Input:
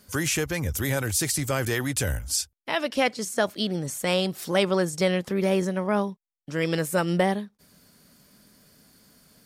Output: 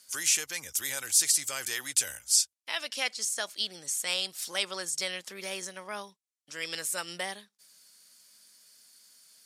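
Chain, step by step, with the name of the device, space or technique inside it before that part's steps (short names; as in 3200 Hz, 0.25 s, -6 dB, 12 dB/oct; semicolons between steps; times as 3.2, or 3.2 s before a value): piezo pickup straight into a mixer (LPF 8200 Hz 12 dB/oct; differentiator); gain +6 dB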